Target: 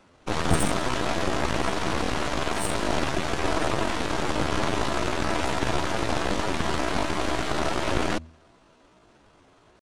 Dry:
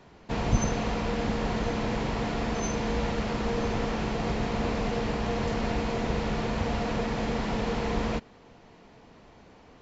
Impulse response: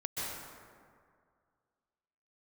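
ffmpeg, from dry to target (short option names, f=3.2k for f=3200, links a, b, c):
-af "aeval=exprs='0.335*(cos(1*acos(clip(val(0)/0.335,-1,1)))-cos(1*PI/2))+0.0531*(cos(2*acos(clip(val(0)/0.335,-1,1)))-cos(2*PI/2))+0.0168*(cos(7*acos(clip(val(0)/0.335,-1,1)))-cos(7*PI/2))+0.106*(cos(8*acos(clip(val(0)/0.335,-1,1)))-cos(8*PI/2))':c=same,bandreject=f=56.5:t=h:w=4,bandreject=f=113:t=h:w=4,bandreject=f=169.5:t=h:w=4,asetrate=62367,aresample=44100,atempo=0.707107"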